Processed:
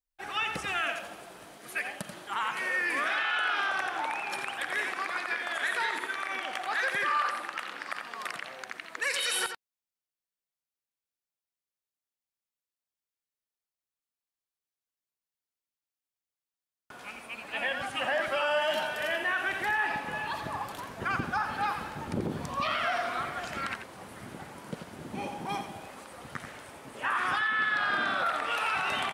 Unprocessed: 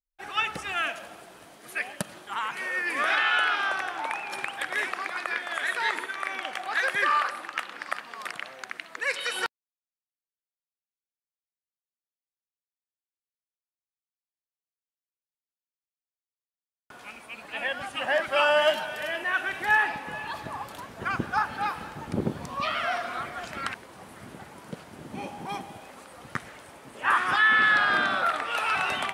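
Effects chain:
0:09.02–0:09.43: high-shelf EQ 4,100 Hz +12 dB
brickwall limiter −21 dBFS, peak gain reduction 10 dB
single-tap delay 86 ms −8.5 dB

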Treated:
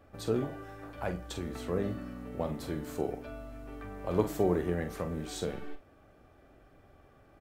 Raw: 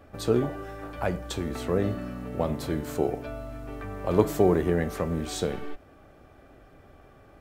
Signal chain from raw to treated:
double-tracking delay 45 ms −9 dB
level −7 dB

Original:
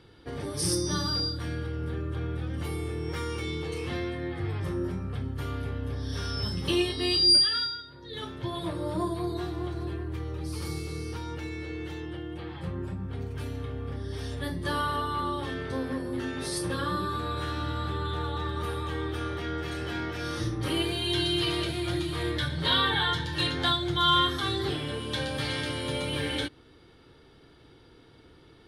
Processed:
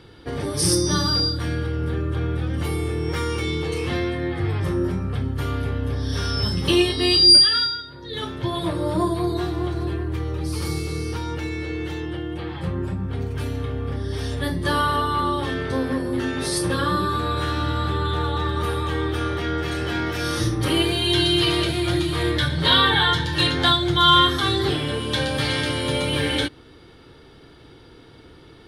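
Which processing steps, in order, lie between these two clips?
0:20.06–0:20.65: high-shelf EQ 7,600 Hz +9.5 dB
level +8 dB

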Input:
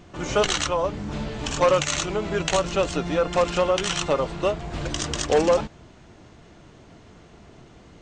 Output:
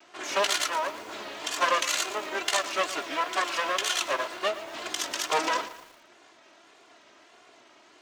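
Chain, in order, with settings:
lower of the sound and its delayed copy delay 3 ms
meter weighting curve A
tape wow and flutter 100 cents
high-pass filter 69 Hz
low-shelf EQ 340 Hz −8 dB
feedback echo at a low word length 115 ms, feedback 55%, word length 7 bits, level −14 dB

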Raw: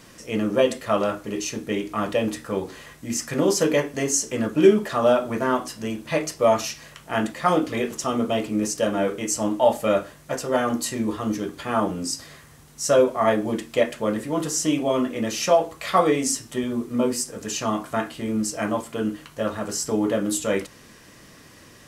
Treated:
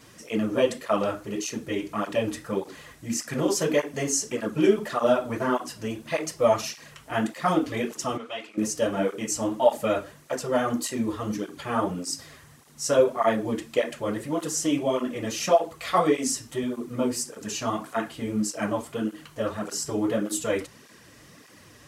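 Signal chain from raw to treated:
0:08.17–0:08.58: resonant band-pass 2,300 Hz, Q 0.82
through-zero flanger with one copy inverted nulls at 1.7 Hz, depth 6.1 ms

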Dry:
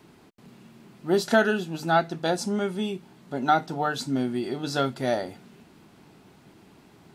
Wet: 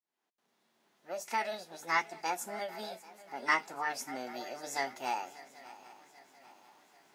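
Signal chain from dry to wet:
fade in at the beginning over 2.23 s
high-pass filter 450 Hz 12 dB per octave
feedback echo with a long and a short gap by turns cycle 788 ms, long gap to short 3 to 1, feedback 43%, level −18 dB
formants moved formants +6 semitones
level −7 dB

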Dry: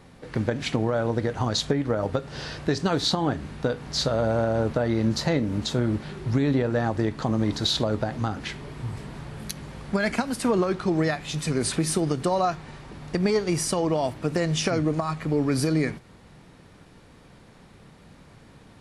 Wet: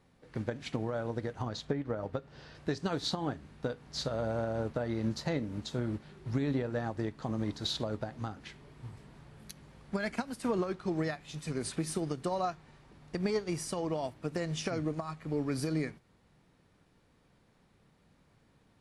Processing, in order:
0:01.42–0:02.55: low-pass filter 3,400 Hz 6 dB per octave
expander for the loud parts 1.5 to 1, over −35 dBFS
level −8 dB

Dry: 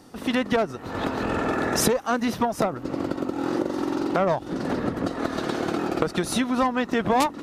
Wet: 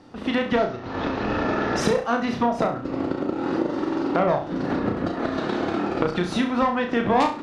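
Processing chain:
0:00.56–0:01.76: variable-slope delta modulation 32 kbit/s
low-pass filter 4,000 Hz 12 dB per octave
flutter between parallel walls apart 5.8 metres, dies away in 0.38 s

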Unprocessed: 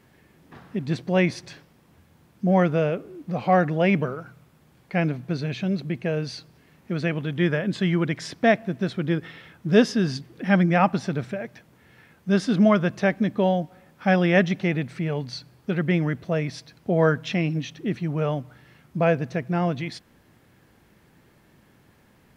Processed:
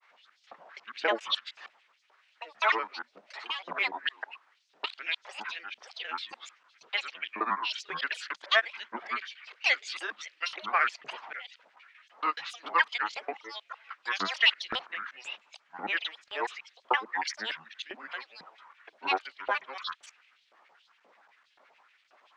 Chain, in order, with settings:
reversed piece by piece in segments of 151 ms
Chebyshev high-pass filter 300 Hz, order 6
auto-filter high-pass saw up 1.9 Hz 850–3,700 Hz
granular cloud, grains 21 per second, spray 15 ms, pitch spread up and down by 12 semitones
in parallel at −12 dB: soft clipping −19.5 dBFS, distortion −12 dB
on the sum: high-frequency loss of the air 130 metres
level −1 dB

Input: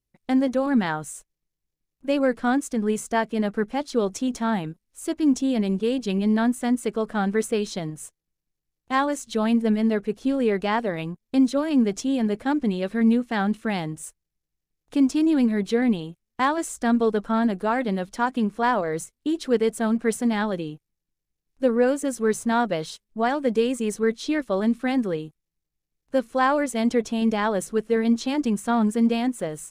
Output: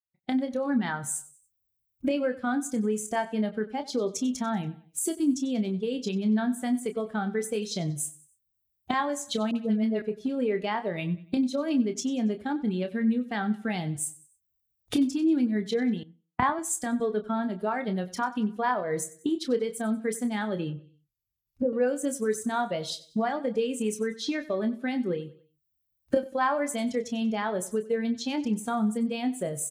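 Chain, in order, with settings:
spectral dynamics exaggerated over time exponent 1.5
camcorder AGC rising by 51 dB per second
repeating echo 94 ms, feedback 38%, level −18 dB
0:20.68–0:21.73: treble cut that deepens with the level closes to 660 Hz, closed at −23 dBFS
high-pass filter 94 Hz 12 dB per octave
double-tracking delay 28 ms −8.5 dB
0:09.51–0:10.02: all-pass dispersion highs, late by 46 ms, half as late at 940 Hz
0:16.03–0:17.00: multiband upward and downward expander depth 100%
level −4 dB

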